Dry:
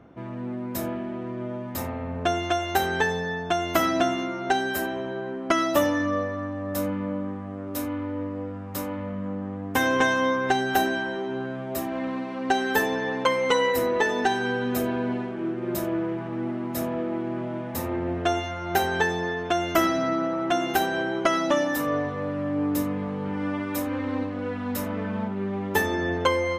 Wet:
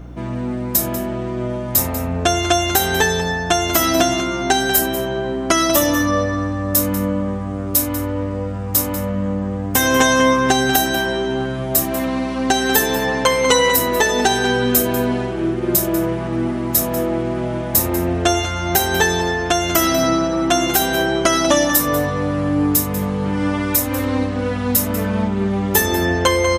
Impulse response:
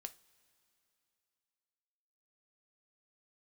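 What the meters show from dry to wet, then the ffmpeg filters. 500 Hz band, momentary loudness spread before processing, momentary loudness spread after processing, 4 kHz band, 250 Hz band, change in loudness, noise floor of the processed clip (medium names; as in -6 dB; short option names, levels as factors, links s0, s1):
+7.0 dB, 9 LU, 7 LU, +12.0 dB, +7.5 dB, +9.0 dB, -24 dBFS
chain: -filter_complex "[0:a]bass=f=250:g=3,treble=f=4000:g=15,alimiter=limit=0.299:level=0:latency=1:release=250,asplit=2[s0][s1];[s1]adelay=192.4,volume=0.316,highshelf=f=4000:g=-4.33[s2];[s0][s2]amix=inputs=2:normalize=0,aeval=exprs='val(0)+0.00794*(sin(2*PI*60*n/s)+sin(2*PI*2*60*n/s)/2+sin(2*PI*3*60*n/s)/3+sin(2*PI*4*60*n/s)/4+sin(2*PI*5*60*n/s)/5)':c=same,volume=2.51"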